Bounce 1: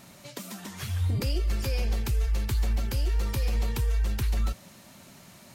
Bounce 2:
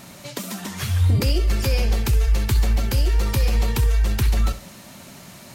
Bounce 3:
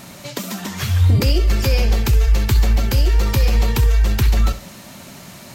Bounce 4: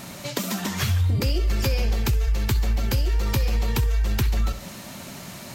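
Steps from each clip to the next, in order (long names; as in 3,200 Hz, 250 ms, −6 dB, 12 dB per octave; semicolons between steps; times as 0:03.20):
flutter between parallel walls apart 11.2 metres, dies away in 0.27 s; level +8.5 dB
dynamic equaliser 9,600 Hz, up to −8 dB, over −55 dBFS, Q 3.6; level +4 dB
downward compressor, threshold −19 dBFS, peak gain reduction 9 dB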